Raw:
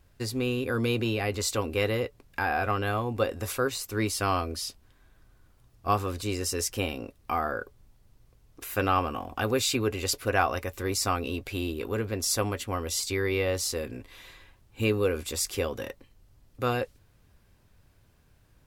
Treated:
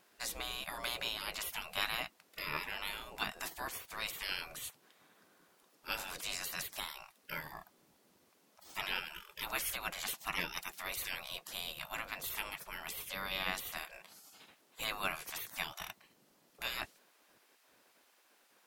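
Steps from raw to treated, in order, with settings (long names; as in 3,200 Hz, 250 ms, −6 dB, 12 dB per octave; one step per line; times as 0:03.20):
gate on every frequency bin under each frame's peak −20 dB weak
level +3 dB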